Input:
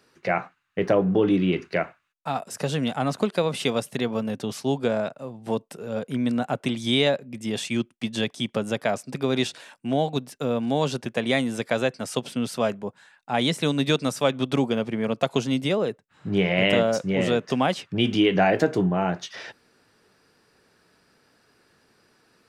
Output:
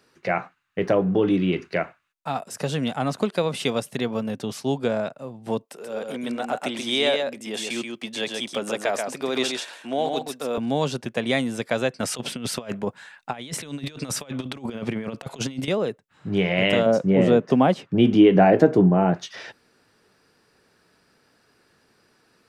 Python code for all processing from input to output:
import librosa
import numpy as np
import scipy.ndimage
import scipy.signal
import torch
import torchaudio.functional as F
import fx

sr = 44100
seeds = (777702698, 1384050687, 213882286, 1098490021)

y = fx.chain(x, sr, fx.highpass(hz=340.0, slope=12),
    fx.transient(attack_db=0, sustain_db=6),
    fx.echo_single(ms=132, db=-4.5), at=(5.65, 10.58))
y = fx.chain(y, sr, fx.peak_eq(hz=2100.0, db=3.5, octaves=1.6),
    fx.over_compress(threshold_db=-29.0, ratio=-0.5), at=(12.0, 15.68))
y = fx.chain(y, sr, fx.highpass(hz=130.0, slope=12),
    fx.tilt_shelf(db=7.5, hz=1300.0), at=(16.86, 19.14))